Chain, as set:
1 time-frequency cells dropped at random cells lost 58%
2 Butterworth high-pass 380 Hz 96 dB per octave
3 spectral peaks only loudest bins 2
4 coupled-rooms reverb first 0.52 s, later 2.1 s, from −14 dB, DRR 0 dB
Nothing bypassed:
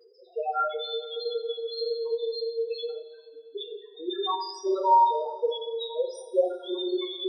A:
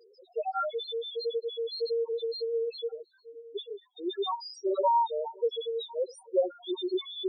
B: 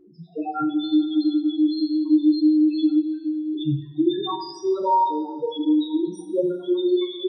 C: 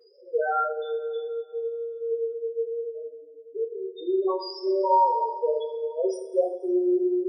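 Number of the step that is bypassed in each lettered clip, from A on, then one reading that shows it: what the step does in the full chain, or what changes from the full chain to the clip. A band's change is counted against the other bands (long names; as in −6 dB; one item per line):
4, change in momentary loudness spread −3 LU
2, 250 Hz band +20.5 dB
1, 4 kHz band −15.0 dB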